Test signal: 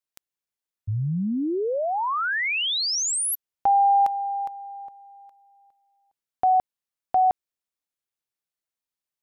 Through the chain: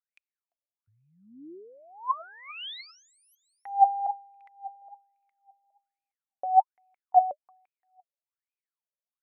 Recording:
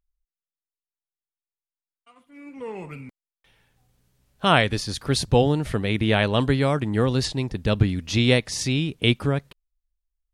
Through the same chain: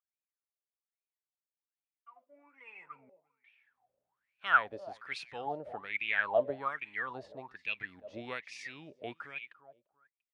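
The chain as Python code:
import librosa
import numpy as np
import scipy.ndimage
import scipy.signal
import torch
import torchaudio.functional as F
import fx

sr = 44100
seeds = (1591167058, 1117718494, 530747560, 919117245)

y = fx.echo_feedback(x, sr, ms=344, feedback_pct=23, wet_db=-22.0)
y = fx.wah_lfo(y, sr, hz=1.2, low_hz=560.0, high_hz=2500.0, q=16.0)
y = y * librosa.db_to_amplitude(7.0)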